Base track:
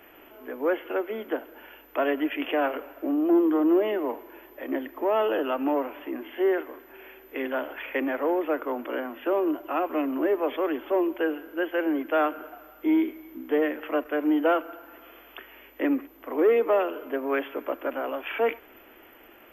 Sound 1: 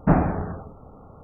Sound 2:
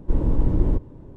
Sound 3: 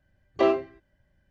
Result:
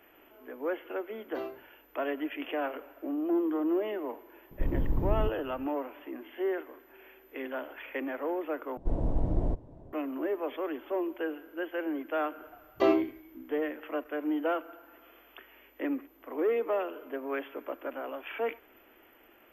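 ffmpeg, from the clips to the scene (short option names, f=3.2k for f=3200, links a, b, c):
-filter_complex "[3:a]asplit=2[a][b];[2:a]asplit=2[c][d];[0:a]volume=-7.5dB[e];[d]equalizer=f=680:t=o:w=0.47:g=14.5[f];[e]asplit=2[g][h];[g]atrim=end=8.774[i];[f]atrim=end=1.16,asetpts=PTS-STARTPTS,volume=-9dB[j];[h]atrim=start=9.926[k];[a]atrim=end=1.3,asetpts=PTS-STARTPTS,volume=-17dB,afade=t=in:d=0.004:c=hsin,afade=t=out:st=1.296:d=0.004:c=hsin,adelay=960[l];[c]atrim=end=1.16,asetpts=PTS-STARTPTS,volume=-9dB,afade=t=in:d=0.004:c=hsin,afade=t=out:st=1.156:d=0.004:c=hsin,adelay=4510[m];[b]atrim=end=1.3,asetpts=PTS-STARTPTS,volume=-3.5dB,afade=t=in:d=0.004:c=hsin,afade=t=out:st=1.296:d=0.004:c=hsin,adelay=12410[n];[i][j]acrossfade=d=0.004:c1=hsin:c2=hsin[o];[o][k]acrossfade=d=0.004:c1=hsin:c2=hsin[p];[p][l][m][n]amix=inputs=4:normalize=0"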